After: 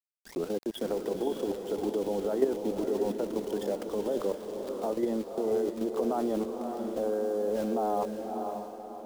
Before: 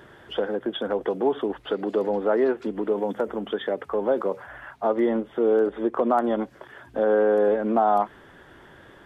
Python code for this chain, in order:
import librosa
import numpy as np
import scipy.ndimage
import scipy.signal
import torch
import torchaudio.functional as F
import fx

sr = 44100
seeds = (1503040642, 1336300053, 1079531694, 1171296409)

y = fx.tape_start_head(x, sr, length_s=0.5)
y = np.where(np.abs(y) >= 10.0 ** (-34.0 / 20.0), y, 0.0)
y = fx.peak_eq(y, sr, hz=1600.0, db=-11.0, octaves=1.6)
y = fx.level_steps(y, sr, step_db=10)
y = fx.echo_diffused(y, sr, ms=558, feedback_pct=42, wet_db=-5.0)